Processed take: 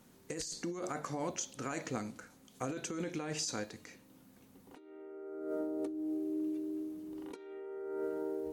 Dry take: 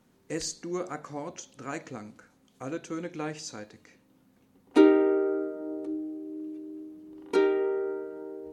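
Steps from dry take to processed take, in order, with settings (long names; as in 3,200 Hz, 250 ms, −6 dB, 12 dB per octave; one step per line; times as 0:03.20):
high-shelf EQ 5,500 Hz +8 dB
compressor whose output falls as the input rises −37 dBFS, ratio −1
level −4 dB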